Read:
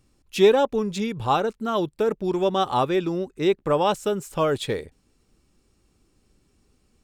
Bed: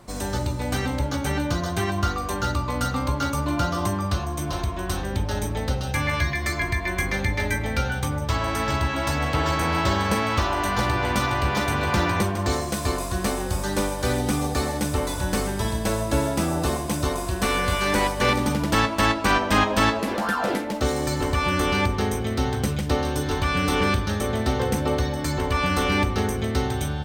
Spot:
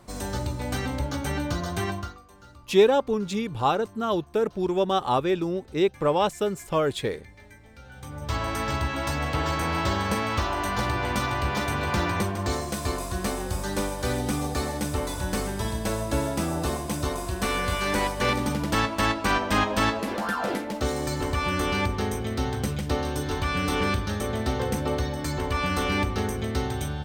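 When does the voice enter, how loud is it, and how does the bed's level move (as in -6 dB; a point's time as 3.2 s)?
2.35 s, -1.5 dB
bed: 1.91 s -3.5 dB
2.26 s -25 dB
7.77 s -25 dB
8.34 s -3.5 dB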